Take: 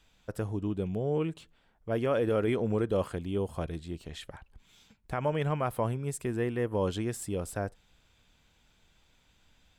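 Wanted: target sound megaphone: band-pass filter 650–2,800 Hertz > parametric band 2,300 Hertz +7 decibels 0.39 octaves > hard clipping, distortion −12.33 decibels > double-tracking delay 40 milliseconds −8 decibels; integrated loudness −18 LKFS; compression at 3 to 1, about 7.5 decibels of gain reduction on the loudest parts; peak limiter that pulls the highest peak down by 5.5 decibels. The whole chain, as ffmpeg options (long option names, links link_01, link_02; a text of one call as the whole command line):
ffmpeg -i in.wav -filter_complex "[0:a]acompressor=threshold=-34dB:ratio=3,alimiter=level_in=4.5dB:limit=-24dB:level=0:latency=1,volume=-4.5dB,highpass=650,lowpass=2800,equalizer=frequency=2300:width_type=o:width=0.39:gain=7,asoftclip=type=hard:threshold=-39dB,asplit=2[link_01][link_02];[link_02]adelay=40,volume=-8dB[link_03];[link_01][link_03]amix=inputs=2:normalize=0,volume=29.5dB" out.wav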